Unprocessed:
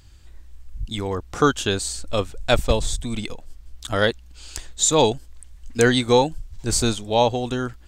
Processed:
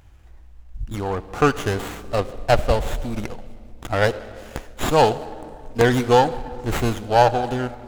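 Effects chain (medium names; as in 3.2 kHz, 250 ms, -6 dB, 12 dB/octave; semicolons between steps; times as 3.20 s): peaking EQ 760 Hz +7.5 dB 0.54 oct; on a send at -15 dB: reverberation RT60 2.1 s, pre-delay 56 ms; on the sum: sliding maximum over 9 samples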